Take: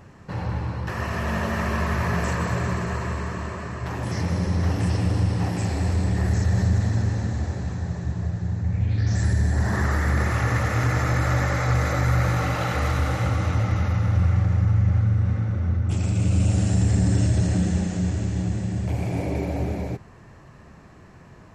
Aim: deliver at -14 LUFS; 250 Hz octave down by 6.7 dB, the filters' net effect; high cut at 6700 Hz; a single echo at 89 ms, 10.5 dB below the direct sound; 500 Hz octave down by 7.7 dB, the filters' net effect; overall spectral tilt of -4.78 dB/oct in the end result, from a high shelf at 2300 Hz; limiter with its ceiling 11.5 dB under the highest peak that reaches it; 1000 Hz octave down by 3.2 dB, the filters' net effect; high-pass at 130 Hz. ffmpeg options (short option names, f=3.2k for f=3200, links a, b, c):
-af "highpass=130,lowpass=6.7k,equalizer=f=250:t=o:g=-8,equalizer=f=500:t=o:g=-7,equalizer=f=1k:t=o:g=-3.5,highshelf=f=2.3k:g=6.5,alimiter=level_in=2dB:limit=-24dB:level=0:latency=1,volume=-2dB,aecho=1:1:89:0.299,volume=20dB"